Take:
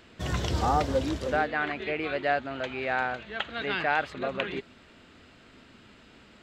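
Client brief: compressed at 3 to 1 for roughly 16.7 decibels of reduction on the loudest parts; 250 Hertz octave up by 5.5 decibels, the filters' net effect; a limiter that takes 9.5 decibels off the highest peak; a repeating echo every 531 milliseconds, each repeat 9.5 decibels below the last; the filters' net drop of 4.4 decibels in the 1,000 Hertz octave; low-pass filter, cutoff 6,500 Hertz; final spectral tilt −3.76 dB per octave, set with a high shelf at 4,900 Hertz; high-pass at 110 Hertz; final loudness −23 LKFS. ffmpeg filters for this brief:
ffmpeg -i in.wav -af "highpass=110,lowpass=6500,equalizer=frequency=250:width_type=o:gain=7.5,equalizer=frequency=1000:width_type=o:gain=-8,highshelf=frequency=4900:gain=8,acompressor=threshold=-46dB:ratio=3,alimiter=level_in=11.5dB:limit=-24dB:level=0:latency=1,volume=-11.5dB,aecho=1:1:531|1062|1593|2124:0.335|0.111|0.0365|0.012,volume=23.5dB" out.wav

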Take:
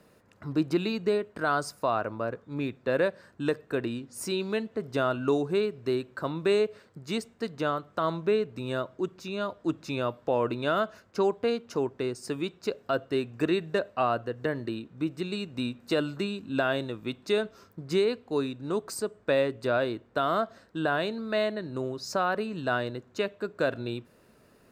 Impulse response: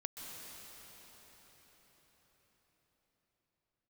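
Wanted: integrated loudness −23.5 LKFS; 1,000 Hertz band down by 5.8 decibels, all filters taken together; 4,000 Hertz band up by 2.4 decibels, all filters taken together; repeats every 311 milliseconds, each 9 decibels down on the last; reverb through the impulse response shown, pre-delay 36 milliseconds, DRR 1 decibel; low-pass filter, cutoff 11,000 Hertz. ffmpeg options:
-filter_complex "[0:a]lowpass=11000,equalizer=frequency=1000:width_type=o:gain=-9,equalizer=frequency=4000:width_type=o:gain=3.5,aecho=1:1:311|622|933|1244:0.355|0.124|0.0435|0.0152,asplit=2[link_01][link_02];[1:a]atrim=start_sample=2205,adelay=36[link_03];[link_02][link_03]afir=irnorm=-1:irlink=0,volume=0dB[link_04];[link_01][link_04]amix=inputs=2:normalize=0,volume=4.5dB"

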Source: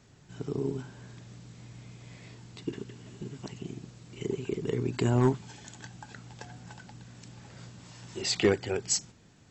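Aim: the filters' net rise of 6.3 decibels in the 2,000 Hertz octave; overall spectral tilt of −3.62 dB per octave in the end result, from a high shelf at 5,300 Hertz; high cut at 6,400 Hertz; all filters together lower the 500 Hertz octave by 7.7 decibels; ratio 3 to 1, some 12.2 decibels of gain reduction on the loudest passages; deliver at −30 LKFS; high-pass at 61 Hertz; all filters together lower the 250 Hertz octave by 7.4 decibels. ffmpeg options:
ffmpeg -i in.wav -af "highpass=61,lowpass=6400,equalizer=frequency=250:width_type=o:gain=-7.5,equalizer=frequency=500:width_type=o:gain=-7.5,equalizer=frequency=2000:width_type=o:gain=7.5,highshelf=frequency=5300:gain=5.5,acompressor=threshold=-39dB:ratio=3,volume=14dB" out.wav

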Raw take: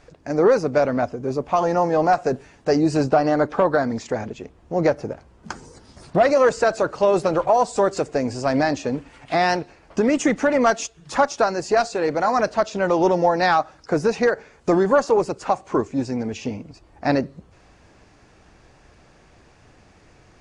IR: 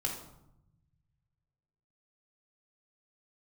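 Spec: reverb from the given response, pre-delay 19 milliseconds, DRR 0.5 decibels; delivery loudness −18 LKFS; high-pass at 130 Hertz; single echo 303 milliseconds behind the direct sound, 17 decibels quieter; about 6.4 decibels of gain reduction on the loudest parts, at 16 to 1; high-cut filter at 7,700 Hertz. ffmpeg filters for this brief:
-filter_complex "[0:a]highpass=130,lowpass=7700,acompressor=threshold=-18dB:ratio=16,aecho=1:1:303:0.141,asplit=2[link_01][link_02];[1:a]atrim=start_sample=2205,adelay=19[link_03];[link_02][link_03]afir=irnorm=-1:irlink=0,volume=-3.5dB[link_04];[link_01][link_04]amix=inputs=2:normalize=0,volume=3.5dB"

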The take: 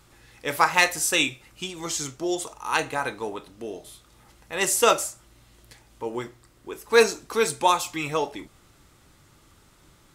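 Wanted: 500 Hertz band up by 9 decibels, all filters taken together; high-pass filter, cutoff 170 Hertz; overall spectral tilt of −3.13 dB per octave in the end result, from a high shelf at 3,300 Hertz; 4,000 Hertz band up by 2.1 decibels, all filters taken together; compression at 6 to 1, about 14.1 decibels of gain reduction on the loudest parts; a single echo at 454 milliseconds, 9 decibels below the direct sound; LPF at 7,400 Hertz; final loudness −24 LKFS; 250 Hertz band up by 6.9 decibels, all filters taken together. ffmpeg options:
ffmpeg -i in.wav -af "highpass=170,lowpass=7400,equalizer=frequency=250:width_type=o:gain=6.5,equalizer=frequency=500:width_type=o:gain=8.5,highshelf=frequency=3300:gain=-6.5,equalizer=frequency=4000:width_type=o:gain=7,acompressor=threshold=-19dB:ratio=6,aecho=1:1:454:0.355,volume=2.5dB" out.wav

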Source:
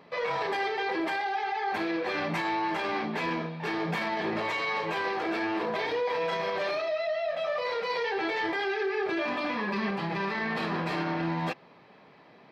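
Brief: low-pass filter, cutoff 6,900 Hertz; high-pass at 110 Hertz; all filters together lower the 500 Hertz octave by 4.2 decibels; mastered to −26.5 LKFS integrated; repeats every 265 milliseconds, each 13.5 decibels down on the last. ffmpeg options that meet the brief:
ffmpeg -i in.wav -af "highpass=110,lowpass=6900,equalizer=frequency=500:width_type=o:gain=-5.5,aecho=1:1:265|530:0.211|0.0444,volume=5dB" out.wav

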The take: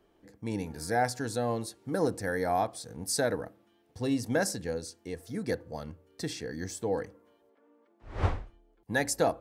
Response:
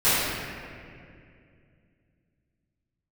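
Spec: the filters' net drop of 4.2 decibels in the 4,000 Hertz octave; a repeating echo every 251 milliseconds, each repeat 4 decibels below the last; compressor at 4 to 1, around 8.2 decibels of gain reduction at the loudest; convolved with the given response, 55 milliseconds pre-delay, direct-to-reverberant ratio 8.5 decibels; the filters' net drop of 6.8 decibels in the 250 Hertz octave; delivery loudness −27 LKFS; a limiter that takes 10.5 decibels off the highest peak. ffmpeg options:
-filter_complex "[0:a]equalizer=frequency=250:width_type=o:gain=-8.5,equalizer=frequency=4000:width_type=o:gain=-5.5,acompressor=threshold=-33dB:ratio=4,alimiter=level_in=8.5dB:limit=-24dB:level=0:latency=1,volume=-8.5dB,aecho=1:1:251|502|753|1004|1255|1506|1757|2008|2259:0.631|0.398|0.25|0.158|0.0994|0.0626|0.0394|0.0249|0.0157,asplit=2[link_01][link_02];[1:a]atrim=start_sample=2205,adelay=55[link_03];[link_02][link_03]afir=irnorm=-1:irlink=0,volume=-28dB[link_04];[link_01][link_04]amix=inputs=2:normalize=0,volume=14dB"

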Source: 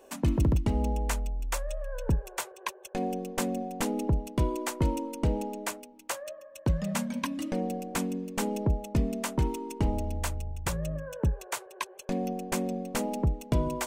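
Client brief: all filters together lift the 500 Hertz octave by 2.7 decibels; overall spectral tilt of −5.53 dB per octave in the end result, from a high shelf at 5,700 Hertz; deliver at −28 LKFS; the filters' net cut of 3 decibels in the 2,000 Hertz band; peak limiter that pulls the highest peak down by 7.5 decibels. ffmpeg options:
ffmpeg -i in.wav -af "equalizer=frequency=500:width_type=o:gain=3.5,equalizer=frequency=2000:width_type=o:gain=-5,highshelf=frequency=5700:gain=6,volume=5dB,alimiter=limit=-16.5dB:level=0:latency=1" out.wav

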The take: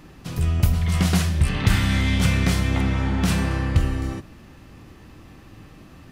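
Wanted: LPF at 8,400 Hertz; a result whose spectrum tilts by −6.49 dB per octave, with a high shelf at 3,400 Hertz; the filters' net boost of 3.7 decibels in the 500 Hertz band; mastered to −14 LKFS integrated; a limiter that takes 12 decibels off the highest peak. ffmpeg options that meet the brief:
ffmpeg -i in.wav -af "lowpass=8400,equalizer=frequency=500:width_type=o:gain=5,highshelf=frequency=3400:gain=-7.5,volume=13dB,alimiter=limit=-5dB:level=0:latency=1" out.wav

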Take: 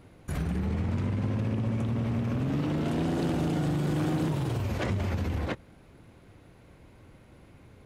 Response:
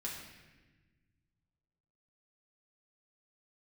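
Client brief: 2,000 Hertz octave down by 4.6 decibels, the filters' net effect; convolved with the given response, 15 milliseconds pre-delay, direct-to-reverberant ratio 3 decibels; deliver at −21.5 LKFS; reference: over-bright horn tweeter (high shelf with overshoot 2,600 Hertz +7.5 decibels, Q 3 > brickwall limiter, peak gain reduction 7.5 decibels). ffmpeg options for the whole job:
-filter_complex "[0:a]equalizer=frequency=2000:width_type=o:gain=-4,asplit=2[link_01][link_02];[1:a]atrim=start_sample=2205,adelay=15[link_03];[link_02][link_03]afir=irnorm=-1:irlink=0,volume=-3dB[link_04];[link_01][link_04]amix=inputs=2:normalize=0,highshelf=frequency=2600:width_type=q:width=3:gain=7.5,volume=9.5dB,alimiter=limit=-12.5dB:level=0:latency=1"

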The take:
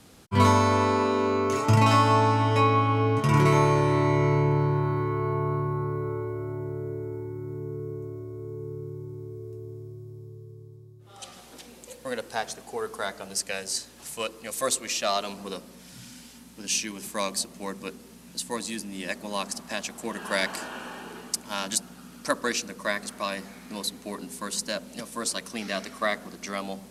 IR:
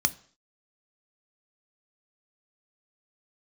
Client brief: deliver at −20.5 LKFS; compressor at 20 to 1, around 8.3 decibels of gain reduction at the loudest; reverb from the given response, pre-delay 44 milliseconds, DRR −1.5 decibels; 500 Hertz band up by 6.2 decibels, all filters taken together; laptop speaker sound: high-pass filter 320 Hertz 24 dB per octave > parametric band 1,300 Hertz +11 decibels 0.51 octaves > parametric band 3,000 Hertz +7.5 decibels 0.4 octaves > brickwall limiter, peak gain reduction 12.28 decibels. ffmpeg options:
-filter_complex "[0:a]equalizer=frequency=500:width_type=o:gain=8,acompressor=threshold=-21dB:ratio=20,asplit=2[link_01][link_02];[1:a]atrim=start_sample=2205,adelay=44[link_03];[link_02][link_03]afir=irnorm=-1:irlink=0,volume=-7.5dB[link_04];[link_01][link_04]amix=inputs=2:normalize=0,highpass=frequency=320:width=0.5412,highpass=frequency=320:width=1.3066,equalizer=frequency=1300:width_type=o:width=0.51:gain=11,equalizer=frequency=3000:width_type=o:width=0.4:gain=7.5,volume=9dB,alimiter=limit=-10.5dB:level=0:latency=1"

